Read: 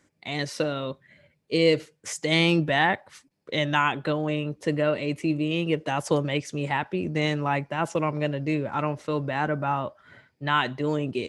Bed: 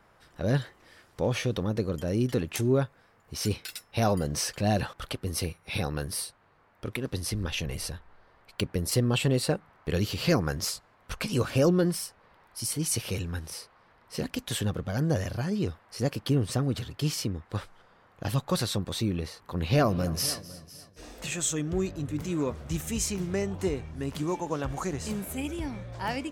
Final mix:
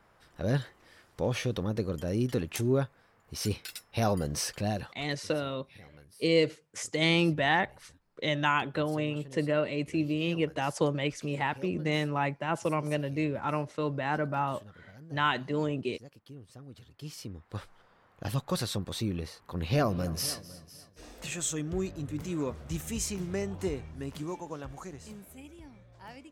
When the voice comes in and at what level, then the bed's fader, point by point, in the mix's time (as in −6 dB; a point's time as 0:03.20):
4.70 s, −4.0 dB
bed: 0:04.58 −2.5 dB
0:05.29 −23 dB
0:16.52 −23 dB
0:17.71 −3.5 dB
0:23.85 −3.5 dB
0:25.50 −16 dB